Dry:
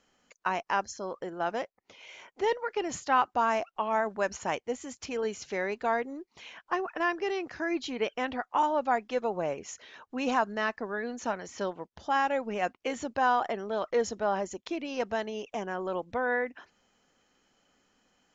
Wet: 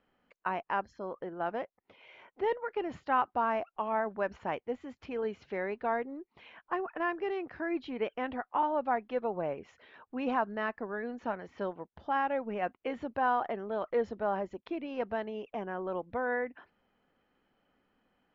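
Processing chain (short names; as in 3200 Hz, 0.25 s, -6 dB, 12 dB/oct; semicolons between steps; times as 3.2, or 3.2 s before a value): air absorption 410 m; gain -1.5 dB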